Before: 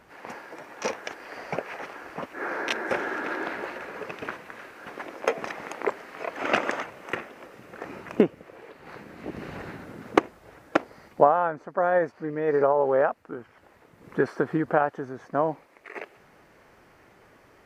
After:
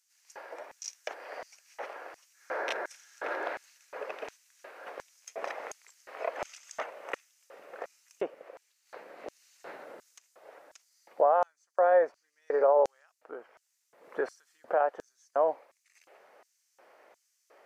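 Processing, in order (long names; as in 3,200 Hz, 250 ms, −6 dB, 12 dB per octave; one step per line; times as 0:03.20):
brickwall limiter −13.5 dBFS, peak gain reduction 11.5 dB
auto-filter high-pass square 1.4 Hz 560–6,400 Hz
level −5.5 dB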